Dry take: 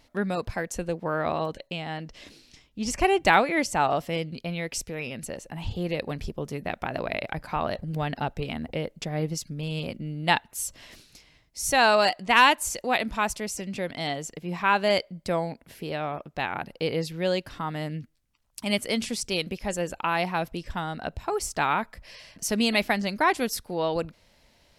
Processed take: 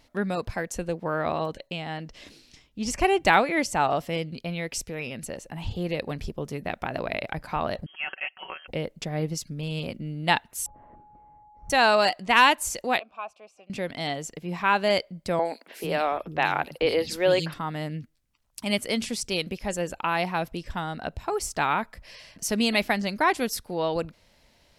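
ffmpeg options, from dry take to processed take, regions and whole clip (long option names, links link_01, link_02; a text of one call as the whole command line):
ffmpeg -i in.wav -filter_complex "[0:a]asettb=1/sr,asplit=3[link_01][link_02][link_03];[link_01]atrim=end=7.864[link_04];[link_02]atrim=start=7.86:end=8.68,asetpts=PTS-STARTPTS,afade=type=in:duration=0.004:curve=qsin,afade=type=out:start_time=0.816:duration=0.004:curve=qsin,highpass=780,aecho=1:1:5.3:0.63,atrim=end_sample=36162,lowpass=frequency=2900:width_type=q:width=0.5098,lowpass=frequency=2900:width_type=q:width=0.6013,lowpass=frequency=2900:width_type=q:width=0.9,lowpass=frequency=2900:width_type=q:width=2.563,afreqshift=-3400[link_05];[link_03]atrim=start=8.676[link_06];[link_04][link_05]acrossfade=duration=0.004:curve1=hsin:curve2=qsin[link_07];[link_07][link_06]acrossfade=duration=0.004:curve1=qsin:curve2=hsin,asettb=1/sr,asplit=3[link_08][link_09][link_10];[link_08]atrim=end=10.664[link_11];[link_09]atrim=start=10.66:end=11.7,asetpts=PTS-STARTPTS,afade=type=in:duration=0.004:curve=qsin,afade=type=out:start_time=1.036:duration=0.004:curve=qsin,lowpass=frequency=1100:width=0.5412,lowpass=frequency=1100:width=1.3066,aeval=exprs='val(0)+0.00282*sin(2*PI*840*n/s)':channel_layout=same[link_12];[link_10]atrim=start=11.696[link_13];[link_11][link_12]acrossfade=duration=0.004:curve1=hsin:curve2=qsin[link_14];[link_14][link_13]acrossfade=duration=0.004:curve1=qsin:curve2=hsin,asettb=1/sr,asplit=3[link_15][link_16][link_17];[link_15]atrim=end=12.994[link_18];[link_16]atrim=start=12.99:end=13.7,asetpts=PTS-STARTPTS,afade=type=in:duration=0.004:curve=qsin,afade=type=out:start_time=0.706:duration=0.004:curve=qsin,asplit=3[link_19][link_20][link_21];[link_19]bandpass=frequency=730:width_type=q:width=8,volume=0dB[link_22];[link_20]bandpass=frequency=1090:width_type=q:width=8,volume=-6dB[link_23];[link_21]bandpass=frequency=2440:width_type=q:width=8,volume=-9dB[link_24];[link_22][link_23][link_24]amix=inputs=3:normalize=0,bass=frequency=250:gain=-3,treble=frequency=4000:gain=-1,bandreject=frequency=710:width=9.5[link_25];[link_17]atrim=start=13.696[link_26];[link_18][link_25]acrossfade=duration=0.004:curve1=hsin:curve2=qsin[link_27];[link_27][link_26]acrossfade=duration=0.004:curve1=qsin:curve2=hsin,asettb=1/sr,asplit=3[link_28][link_29][link_30];[link_28]atrim=end=15.394[link_31];[link_29]atrim=start=15.39:end=17.54,asetpts=PTS-STARTPTS,afade=type=in:duration=0.004:curve=qsin,afade=type=out:start_time=2.146:duration=0.004:curve=qsin,equalizer=frequency=120:width=0.78:gain=-7,acontrast=67,acrossover=split=250|3600[link_32][link_33][link_34];[link_34]adelay=60[link_35];[link_32]adelay=450[link_36];[link_36][link_33][link_35]amix=inputs=3:normalize=0,atrim=end_sample=94815[link_37];[link_30]atrim=start=17.536[link_38];[link_31][link_37]acrossfade=duration=0.004:curve1=hsin:curve2=qsin[link_39];[link_39][link_38]acrossfade=duration=0.004:curve1=qsin:curve2=hsin" out.wav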